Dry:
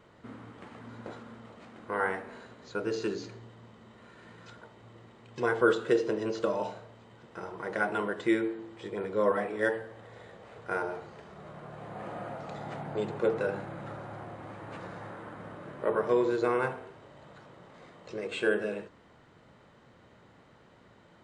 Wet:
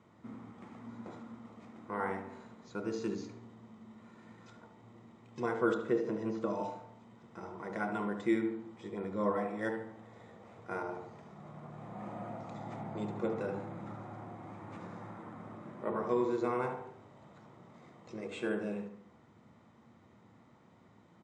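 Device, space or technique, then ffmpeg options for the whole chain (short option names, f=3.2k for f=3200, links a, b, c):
car door speaker: -filter_complex "[0:a]highpass=92,equalizer=f=97:t=q:w=4:g=4,equalizer=f=220:t=q:w=4:g=6,equalizer=f=550:t=q:w=4:g=-6,equalizer=f=1.6k:t=q:w=4:g=-9,equalizer=f=2.9k:t=q:w=4:g=-8,equalizer=f=4.3k:t=q:w=4:g=-7,lowpass=f=8.1k:w=0.5412,lowpass=f=8.1k:w=1.3066,bandreject=f=430:w=12,asettb=1/sr,asplit=3[a][b][c];[a]atrim=end=5.744[d];[b]atrim=start=5.74:end=6.5,asetpts=PTS-STARTPTS,afade=t=in:d=0.004:c=qsin,afade=t=out:st=0.756:d=0.004:c=qsin,acrossover=split=2600[e][f];[f]acompressor=threshold=-59dB:ratio=4:attack=1:release=60[g];[e][g]amix=inputs=2:normalize=0[h];[c]atrim=start=6.496[i];[d][h]acrossfade=d=0.004:c1=hsin:c2=qsin[j];[j][i]acrossfade=d=0.004:c1=qsin:c2=hsin,asplit=2[k][l];[l]adelay=73,lowpass=f=2.4k:p=1,volume=-8dB,asplit=2[m][n];[n]adelay=73,lowpass=f=2.4k:p=1,volume=0.46,asplit=2[o][p];[p]adelay=73,lowpass=f=2.4k:p=1,volume=0.46,asplit=2[q][r];[r]adelay=73,lowpass=f=2.4k:p=1,volume=0.46,asplit=2[s][t];[t]adelay=73,lowpass=f=2.4k:p=1,volume=0.46[u];[k][m][o][q][s][u]amix=inputs=6:normalize=0,volume=-3.5dB"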